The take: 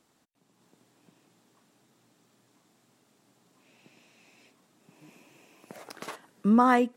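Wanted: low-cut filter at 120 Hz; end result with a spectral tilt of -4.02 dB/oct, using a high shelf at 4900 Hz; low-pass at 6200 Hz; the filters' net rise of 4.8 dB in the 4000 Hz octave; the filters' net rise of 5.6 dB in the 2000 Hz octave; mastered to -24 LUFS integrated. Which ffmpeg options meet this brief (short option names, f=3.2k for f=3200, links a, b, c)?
-af "highpass=120,lowpass=6.2k,equalizer=f=2k:t=o:g=6,equalizer=f=4k:t=o:g=6.5,highshelf=f=4.9k:g=-4.5,volume=1dB"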